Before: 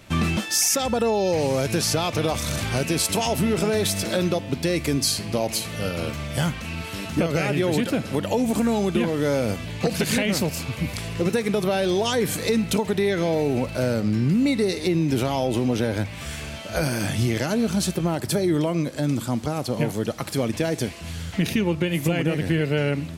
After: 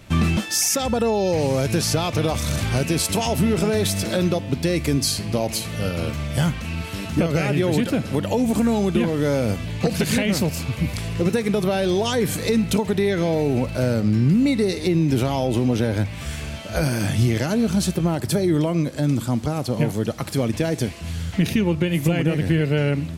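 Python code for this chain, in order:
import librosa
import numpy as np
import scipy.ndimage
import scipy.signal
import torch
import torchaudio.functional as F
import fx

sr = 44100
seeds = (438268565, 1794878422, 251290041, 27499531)

y = fx.low_shelf(x, sr, hz=190.0, db=6.5)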